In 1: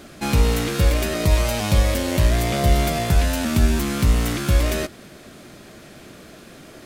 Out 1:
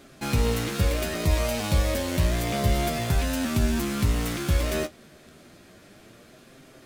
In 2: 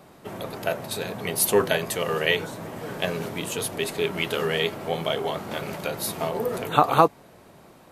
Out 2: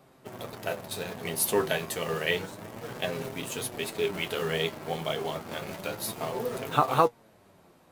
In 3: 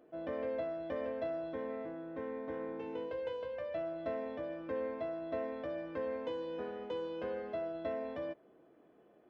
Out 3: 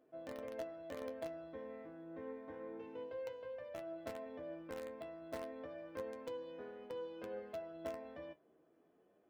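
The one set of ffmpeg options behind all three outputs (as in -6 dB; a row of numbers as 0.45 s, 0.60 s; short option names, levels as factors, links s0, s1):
-filter_complex "[0:a]asplit=2[s0][s1];[s1]acrusher=bits=4:mix=0:aa=0.000001,volume=0.447[s2];[s0][s2]amix=inputs=2:normalize=0,flanger=delay=7.5:depth=5.6:regen=50:speed=0.3:shape=sinusoidal,volume=0.631"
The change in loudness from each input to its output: -5.5 LU, -5.0 LU, -7.5 LU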